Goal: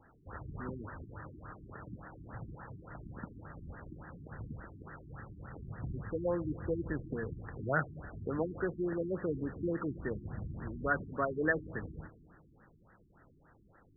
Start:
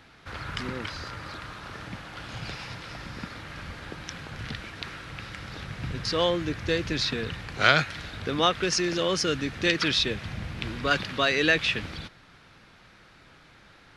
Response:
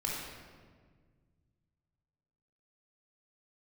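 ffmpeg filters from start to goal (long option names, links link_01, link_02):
-filter_complex "[0:a]asplit=2[link_01][link_02];[1:a]atrim=start_sample=2205[link_03];[link_02][link_03]afir=irnorm=-1:irlink=0,volume=-19dB[link_04];[link_01][link_04]amix=inputs=2:normalize=0,afftfilt=real='re*lt(b*sr/1024,370*pow(2000/370,0.5+0.5*sin(2*PI*3.5*pts/sr)))':imag='im*lt(b*sr/1024,370*pow(2000/370,0.5+0.5*sin(2*PI*3.5*pts/sr)))':win_size=1024:overlap=0.75,volume=-7dB"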